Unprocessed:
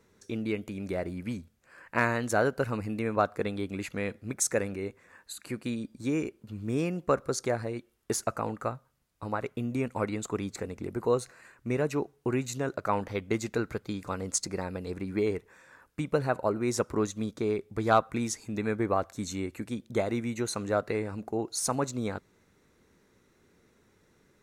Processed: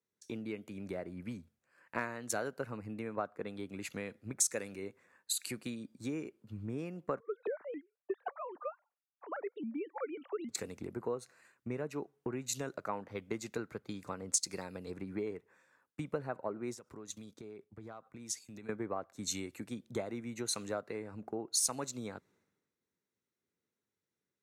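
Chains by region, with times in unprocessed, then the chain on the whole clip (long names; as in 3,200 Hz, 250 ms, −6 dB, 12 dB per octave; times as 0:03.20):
0:07.20–0:10.49: three sine waves on the formant tracks + pitch modulation by a square or saw wave saw up 3.7 Hz, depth 250 cents
0:16.73–0:18.69: noise gate −46 dBFS, range −11 dB + downward compressor 16 to 1, threshold −39 dBFS
whole clip: high-pass filter 120 Hz; downward compressor 4 to 1, threshold −38 dBFS; multiband upward and downward expander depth 100%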